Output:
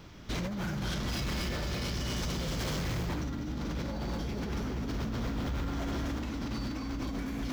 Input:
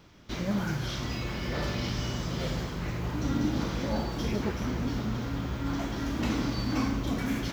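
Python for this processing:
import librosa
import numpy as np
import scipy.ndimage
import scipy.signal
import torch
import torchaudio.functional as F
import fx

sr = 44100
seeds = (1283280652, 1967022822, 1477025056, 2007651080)

y = fx.echo_feedback(x, sr, ms=238, feedback_pct=58, wet_db=-6.0)
y = fx.over_compress(y, sr, threshold_db=-34.0, ratio=-1.0)
y = fx.high_shelf(y, sr, hz=4300.0, db=7.0, at=(1.08, 3.09))
y = np.clip(y, -10.0 ** (-31.5 / 20.0), 10.0 ** (-31.5 / 20.0))
y = fx.low_shelf(y, sr, hz=120.0, db=4.5)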